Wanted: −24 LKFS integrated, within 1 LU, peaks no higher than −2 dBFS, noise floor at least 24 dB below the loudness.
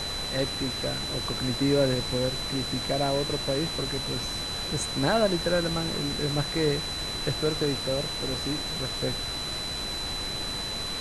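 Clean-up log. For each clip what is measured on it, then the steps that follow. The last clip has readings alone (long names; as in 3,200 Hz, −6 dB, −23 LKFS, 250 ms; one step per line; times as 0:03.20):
interfering tone 4,000 Hz; level of the tone −32 dBFS; background noise floor −33 dBFS; target noise floor −52 dBFS; integrated loudness −27.5 LKFS; sample peak −12.0 dBFS; target loudness −24.0 LKFS
→ notch filter 4,000 Hz, Q 30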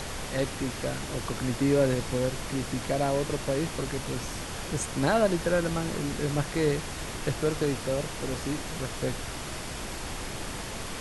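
interfering tone none found; background noise floor −37 dBFS; target noise floor −54 dBFS
→ noise reduction from a noise print 17 dB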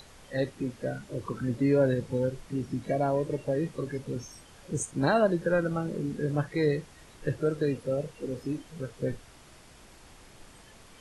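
background noise floor −54 dBFS; target noise floor −55 dBFS
→ noise reduction from a noise print 6 dB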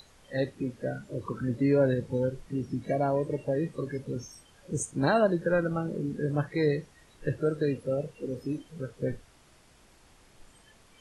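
background noise floor −59 dBFS; integrated loudness −30.0 LKFS; sample peak −12.0 dBFS; target loudness −24.0 LKFS
→ level +6 dB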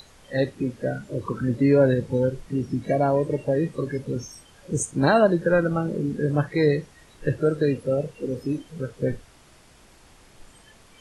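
integrated loudness −24.0 LKFS; sample peak −6.0 dBFS; background noise floor −53 dBFS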